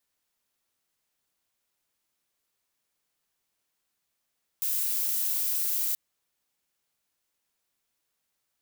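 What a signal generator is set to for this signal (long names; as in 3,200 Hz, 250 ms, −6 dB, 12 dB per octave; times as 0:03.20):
noise violet, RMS −28 dBFS 1.33 s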